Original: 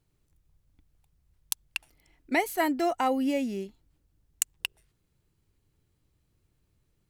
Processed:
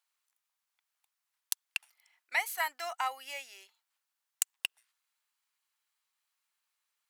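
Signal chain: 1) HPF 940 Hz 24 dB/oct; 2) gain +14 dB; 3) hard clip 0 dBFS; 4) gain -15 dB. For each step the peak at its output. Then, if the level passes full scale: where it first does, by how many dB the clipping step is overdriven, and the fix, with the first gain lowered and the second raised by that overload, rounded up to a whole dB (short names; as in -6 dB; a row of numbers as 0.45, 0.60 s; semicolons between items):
-7.5, +6.5, 0.0, -15.0 dBFS; step 2, 6.5 dB; step 2 +7 dB, step 4 -8 dB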